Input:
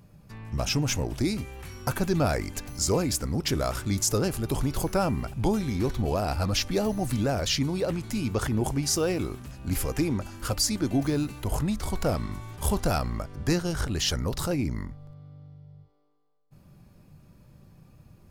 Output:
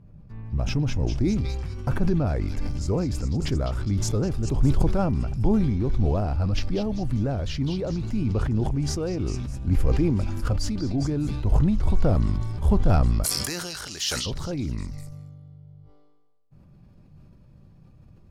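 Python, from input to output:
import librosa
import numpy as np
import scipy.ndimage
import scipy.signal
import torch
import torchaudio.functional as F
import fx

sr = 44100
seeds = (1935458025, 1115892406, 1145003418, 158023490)

y = fx.high_shelf(x, sr, hz=8200.0, db=-10.5)
y = fx.echo_stepped(y, sr, ms=203, hz=3900.0, octaves=0.7, feedback_pct=70, wet_db=-1)
y = fx.rider(y, sr, range_db=3, speed_s=0.5)
y = fx.tilt_eq(y, sr, slope=fx.steps((0.0, -3.0), (13.23, 3.5), (14.25, -1.5)))
y = fx.sustainer(y, sr, db_per_s=25.0)
y = F.gain(torch.from_numpy(y), -5.5).numpy()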